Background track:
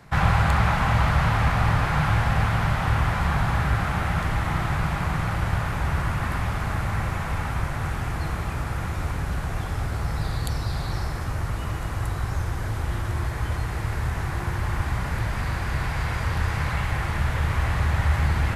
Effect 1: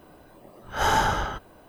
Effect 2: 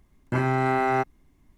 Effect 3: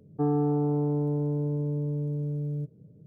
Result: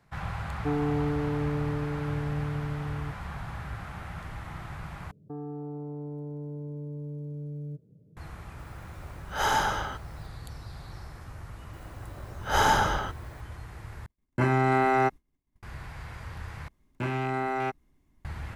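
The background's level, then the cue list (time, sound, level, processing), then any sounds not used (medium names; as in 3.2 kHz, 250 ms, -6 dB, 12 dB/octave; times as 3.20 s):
background track -15 dB
0.46 s: add 3 -3 dB + high-pass 55 Hz
5.11 s: replace with 3 -5 dB + peak limiter -27.5 dBFS
8.59 s: add 1 -2.5 dB + bass shelf 470 Hz -5 dB
11.73 s: add 1 -0.5 dB
14.06 s: replace with 2 + expander -47 dBFS
16.68 s: replace with 2 -6.5 dB + rattle on loud lows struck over -28 dBFS, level -24 dBFS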